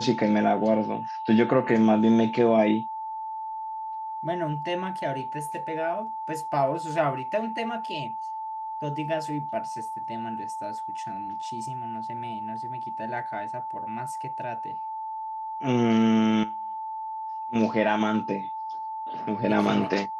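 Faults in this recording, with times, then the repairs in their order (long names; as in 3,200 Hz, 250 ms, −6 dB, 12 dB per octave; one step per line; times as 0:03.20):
whistle 880 Hz −31 dBFS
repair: notch filter 880 Hz, Q 30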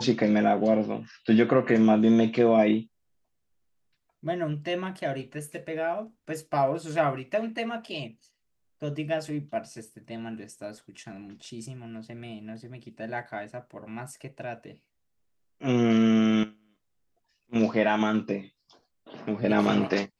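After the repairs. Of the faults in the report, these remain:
none of them is left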